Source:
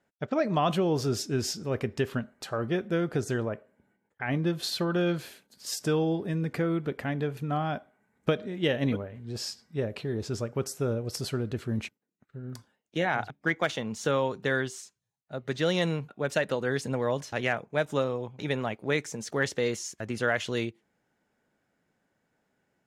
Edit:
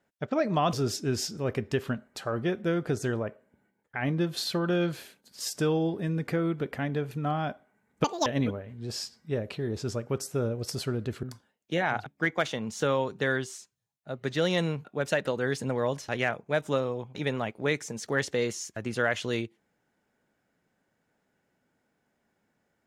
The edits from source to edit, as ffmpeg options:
-filter_complex "[0:a]asplit=5[a][b][c][d][e];[a]atrim=end=0.732[f];[b]atrim=start=0.988:end=8.304[g];[c]atrim=start=8.3:end=8.72,asetpts=PTS-STARTPTS,asetrate=83790,aresample=44100,atrim=end_sample=9748,asetpts=PTS-STARTPTS[h];[d]atrim=start=8.716:end=11.692[i];[e]atrim=start=12.468[j];[f][g]acrossfade=d=0.004:c1=hsin:c2=hsin[k];[k][h]acrossfade=d=0.004:c1=hsin:c2=hsin[l];[l][i]acrossfade=d=0.004:c1=hsin:c2=hsin[m];[m][j]acrossfade=d=0.004:c1=hsin:c2=hsin"

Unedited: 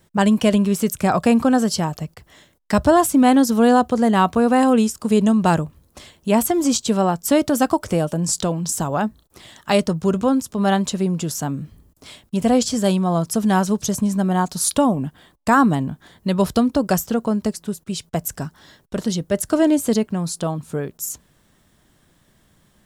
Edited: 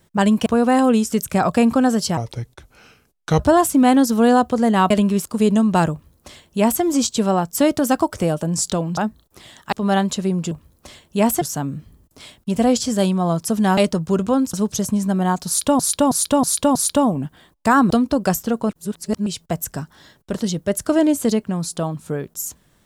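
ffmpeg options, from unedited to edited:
-filter_complex "[0:a]asplit=20[a][b][c][d][e][f][g][h][i][j][k][l][m][n][o][p][q][r][s][t];[a]atrim=end=0.462[u];[b]atrim=start=4.298:end=4.962[v];[c]atrim=start=0.808:end=1.864[w];[d]atrim=start=1.86:end=2.79,asetpts=PTS-STARTPTS,asetrate=33516,aresample=44100,atrim=end_sample=53964,asetpts=PTS-STARTPTS[x];[e]atrim=start=2.786:end=4.302[y];[f]atrim=start=0.458:end=0.812[z];[g]atrim=start=4.958:end=8.682[aa];[h]atrim=start=8.968:end=9.722[ab];[i]atrim=start=10.478:end=11.272[ac];[j]atrim=start=5.628:end=6.532[ad];[k]atrim=start=11.268:end=13.632[ae];[l]atrim=start=9.718:end=10.482[af];[m]atrim=start=13.628:end=14.892[ag];[n]atrim=start=14.568:end=14.892[ah];[o]atrim=start=14.568:end=14.892[ai];[p]atrim=start=14.568:end=14.892[aj];[q]atrim=start=14.568:end=15.722[ak];[r]atrim=start=16.538:end=17.332[al];[s]atrim=start=17.328:end=17.902,asetpts=PTS-STARTPTS,areverse[am];[t]atrim=start=17.898[an];[u][v]acrossfade=d=0.004:c1=hsin:c2=hsin[ao];[ao][w]acrossfade=d=0.004:c1=hsin:c2=hsin[ap];[ap][x]acrossfade=d=0.004:c1=hsin:c2=hsin[aq];[aq][y]acrossfade=d=0.004:c1=hsin:c2=hsin[ar];[ar][z]acrossfade=d=0.004:c1=hsin:c2=hsin[as];[as][aa]acrossfade=d=0.004:c1=hsin:c2=hsin[at];[at][ab]acrossfade=d=0.004:c1=hsin:c2=hsin[au];[au][ac]acrossfade=d=0.004:c1=hsin:c2=hsin[av];[av][ad]acrossfade=d=0.004:c1=hsin:c2=hsin[aw];[aw][ae]acrossfade=d=0.004:c1=hsin:c2=hsin[ax];[ax][af]acrossfade=d=0.004:c1=hsin:c2=hsin[ay];[ay][ag]acrossfade=d=0.004:c1=hsin:c2=hsin[az];[az][ah]acrossfade=d=0.004:c1=hsin:c2=hsin[ba];[ba][ai]acrossfade=d=0.004:c1=hsin:c2=hsin[bb];[bb][aj]acrossfade=d=0.004:c1=hsin:c2=hsin[bc];[bc][ak]acrossfade=d=0.004:c1=hsin:c2=hsin[bd];[bd][al]acrossfade=d=0.004:c1=hsin:c2=hsin[be];[be][am]acrossfade=d=0.004:c1=hsin:c2=hsin[bf];[bf][an]acrossfade=d=0.004:c1=hsin:c2=hsin"

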